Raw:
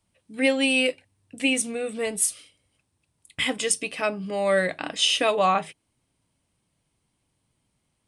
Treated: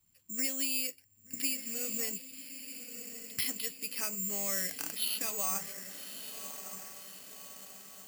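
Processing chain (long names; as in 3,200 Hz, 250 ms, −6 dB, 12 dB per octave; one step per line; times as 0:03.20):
parametric band 620 Hz −10 dB 1.4 octaves
downward compressor 3 to 1, threshold −38 dBFS, peak gain reduction 14.5 dB
feedback delay with all-pass diffusion 1,190 ms, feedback 54%, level −9.5 dB
bad sample-rate conversion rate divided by 6×, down filtered, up zero stuff
level −4 dB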